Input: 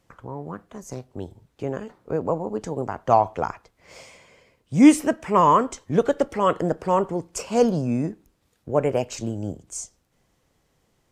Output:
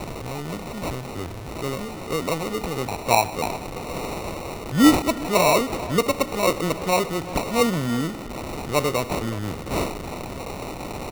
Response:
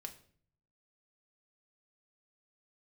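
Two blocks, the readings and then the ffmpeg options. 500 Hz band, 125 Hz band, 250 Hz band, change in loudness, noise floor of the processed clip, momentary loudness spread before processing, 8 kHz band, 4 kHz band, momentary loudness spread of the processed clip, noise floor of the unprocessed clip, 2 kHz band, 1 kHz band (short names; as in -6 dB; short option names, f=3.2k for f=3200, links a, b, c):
-0.5 dB, +1.5 dB, -1.0 dB, -2.0 dB, -34 dBFS, 20 LU, +4.5 dB, +11.5 dB, 14 LU, -69 dBFS, +8.0 dB, -1.5 dB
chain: -filter_complex "[0:a]aeval=exprs='val(0)+0.5*0.0398*sgn(val(0))':c=same,highshelf=f=3.8k:g=10,acrusher=samples=27:mix=1:aa=0.000001,asplit=2[a][b];[b]adelay=360,highpass=300,lowpass=3.4k,asoftclip=type=hard:threshold=-12dB,volume=-14dB[c];[a][c]amix=inputs=2:normalize=0,volume=-2.5dB"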